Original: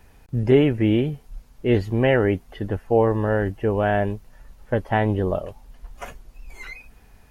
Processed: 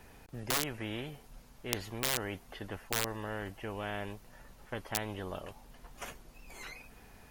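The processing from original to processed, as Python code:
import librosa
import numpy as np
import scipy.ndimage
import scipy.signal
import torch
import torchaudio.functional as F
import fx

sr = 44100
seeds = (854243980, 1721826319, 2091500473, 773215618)

y = (np.mod(10.0 ** (9.5 / 20.0) * x + 1.0, 2.0) - 1.0) / 10.0 ** (9.5 / 20.0)
y = fx.spectral_comp(y, sr, ratio=2.0)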